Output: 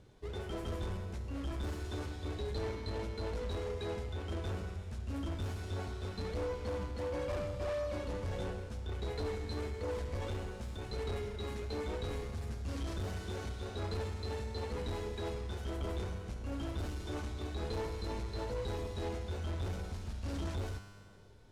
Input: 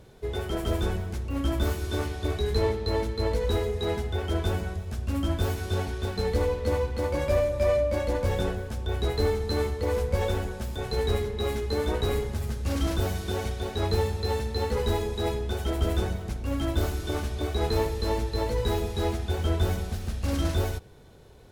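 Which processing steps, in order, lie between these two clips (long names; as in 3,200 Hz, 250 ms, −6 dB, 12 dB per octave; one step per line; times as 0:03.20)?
high-shelf EQ 5,100 Hz +9 dB
in parallel at −5.5 dB: sample-and-hold swept by an LFO 36×, swing 160% 1.5 Hz
on the sum: tuned comb filter 100 Hz, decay 1.7 s, harmonics all, mix 80%
soft clipping −33.5 dBFS, distortion −12 dB
high-frequency loss of the air 63 metres
level +1.5 dB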